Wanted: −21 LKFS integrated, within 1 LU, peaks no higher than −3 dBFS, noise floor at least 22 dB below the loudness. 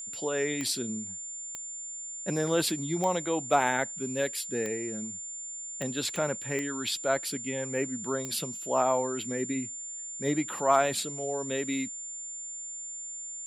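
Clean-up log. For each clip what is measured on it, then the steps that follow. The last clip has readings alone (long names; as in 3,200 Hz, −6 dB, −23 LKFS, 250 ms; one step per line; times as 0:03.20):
number of clicks 8; interfering tone 7,200 Hz; level of the tone −37 dBFS; integrated loudness −30.5 LKFS; sample peak −9.5 dBFS; target loudness −21.0 LKFS
→ click removal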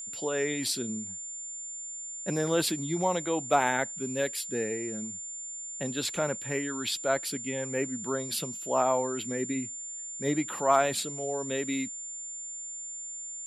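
number of clicks 0; interfering tone 7,200 Hz; level of the tone −37 dBFS
→ notch filter 7,200 Hz, Q 30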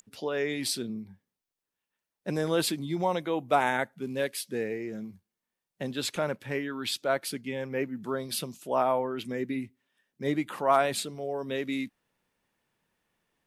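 interfering tone none found; integrated loudness −30.5 LKFS; sample peak −10.0 dBFS; target loudness −21.0 LKFS
→ level +9.5 dB
brickwall limiter −3 dBFS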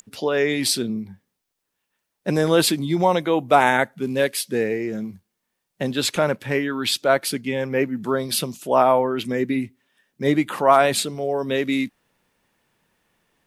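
integrated loudness −21.5 LKFS; sample peak −3.0 dBFS; background noise floor −79 dBFS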